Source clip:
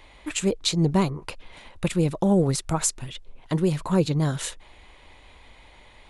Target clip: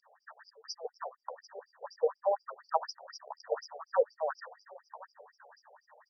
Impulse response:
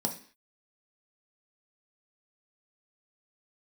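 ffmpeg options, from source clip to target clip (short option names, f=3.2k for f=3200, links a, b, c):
-filter_complex "[0:a]asettb=1/sr,asplit=3[a][b][c];[a]atrim=end=3.084[d];[b]atrim=start=3.08:end=3.66,asetpts=PTS-STARTPTS,afade=t=in:d=0.004:c=qsin,afade=t=out:st=0.576:d=0.004:c=qsin,aeval=exprs='val(0)+0.5*0.0447*sgn(val(0))':c=same[e];[c]atrim=start=3.656[f];[d][e]acrossfade=d=0.004:c1=hsin:c2=qsin[g];[g][f]acrossfade=d=0.004:c1=qsin:c2=hsin,aecho=1:1:1080:0.211,asettb=1/sr,asplit=3[h][i][j];[h]atrim=end=0.804[k];[i]atrim=start=0.8:end=1.95,asetpts=PTS-STARTPTS,afade=t=in:d=0.004:c=qsin,afade=t=out:st=1.146:d=0.004:c=qsin,acompressor=threshold=-23dB:ratio=2.5[l];[j]atrim=start=1.946[m];[k][l]acrossfade=d=0.004:c1=hsin:c2=qsin[n];[n][m]acrossfade=d=0.004:c1=qsin:c2=hsin,flanger=delay=8.6:depth=6.4:regen=40:speed=1.7:shape=triangular,afftfilt=real='re*(1-between(b*sr/4096,1900,4700))':imag='im*(1-between(b*sr/4096,1900,4700))':win_size=4096:overlap=0.75,flanger=delay=3:depth=2.7:regen=-88:speed=0.78:shape=triangular,dynaudnorm=f=160:g=9:m=4dB,highpass=f=430:w=0.5412,highpass=f=430:w=1.3066,afftfilt=real='re*between(b*sr/1024,550*pow(4300/550,0.5+0.5*sin(2*PI*4.1*pts/sr))/1.41,550*pow(4300/550,0.5+0.5*sin(2*PI*4.1*pts/sr))*1.41)':imag='im*between(b*sr/1024,550*pow(4300/550,0.5+0.5*sin(2*PI*4.1*pts/sr))/1.41,550*pow(4300/550,0.5+0.5*sin(2*PI*4.1*pts/sr))*1.41)':win_size=1024:overlap=0.75,volume=6.5dB"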